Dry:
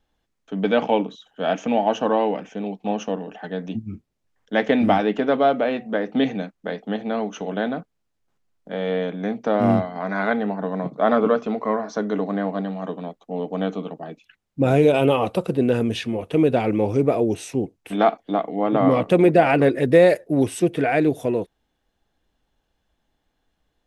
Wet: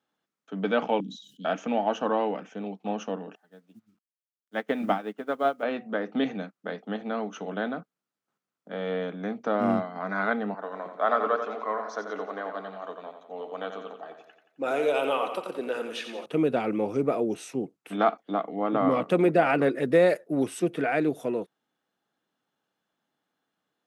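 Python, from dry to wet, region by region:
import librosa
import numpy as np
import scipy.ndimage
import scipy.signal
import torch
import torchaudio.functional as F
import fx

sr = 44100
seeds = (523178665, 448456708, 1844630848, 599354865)

y = fx.chain(x, sr, fx.cheby1_bandstop(low_hz=250.0, high_hz=4100.0, order=3),
    fx.sustainer(db_per_s=82.0), at=(1.0, 1.45))
y = fx.chain(y, sr, fx.high_shelf(hz=8300.0, db=-6.5),
    fx.quant_dither(seeds[0], bits=8, dither='none'),
    fx.upward_expand(threshold_db=-32.0, expansion=2.5), at=(3.35, 5.63))
y = fx.chain(y, sr, fx.highpass(hz=480.0, slope=12),
    fx.echo_feedback(ms=88, feedback_pct=51, wet_db=-8), at=(10.54, 16.26))
y = scipy.signal.sosfilt(scipy.signal.butter(4, 150.0, 'highpass', fs=sr, output='sos'), y)
y = fx.peak_eq(y, sr, hz=1300.0, db=7.5, octaves=0.43)
y = F.gain(torch.from_numpy(y), -6.5).numpy()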